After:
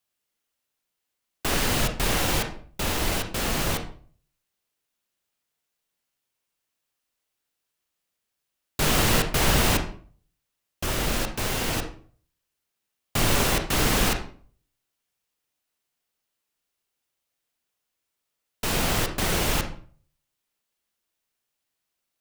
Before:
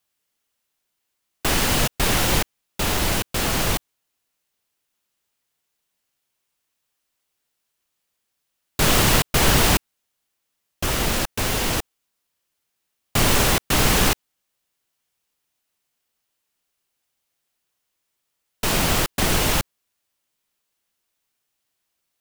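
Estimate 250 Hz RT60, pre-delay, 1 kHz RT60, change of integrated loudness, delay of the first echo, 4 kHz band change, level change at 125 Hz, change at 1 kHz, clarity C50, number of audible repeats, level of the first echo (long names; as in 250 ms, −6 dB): 0.50 s, 31 ms, 0.45 s, −4.5 dB, no echo audible, −4.5 dB, −4.0 dB, −4.0 dB, 8.0 dB, no echo audible, no echo audible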